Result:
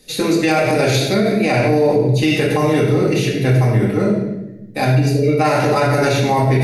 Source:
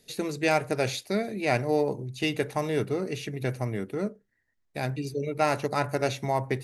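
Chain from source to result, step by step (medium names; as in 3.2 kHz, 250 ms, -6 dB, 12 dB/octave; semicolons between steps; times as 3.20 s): reverberation RT60 0.95 s, pre-delay 4 ms, DRR -5.5 dB; peak limiter -15 dBFS, peak gain reduction 10 dB; trim +8.5 dB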